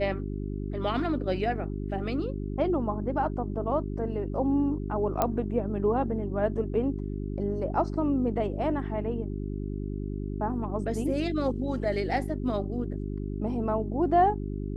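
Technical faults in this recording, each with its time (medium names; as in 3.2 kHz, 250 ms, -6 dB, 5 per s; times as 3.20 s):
hum 50 Hz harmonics 8 -33 dBFS
5.22 s: pop -11 dBFS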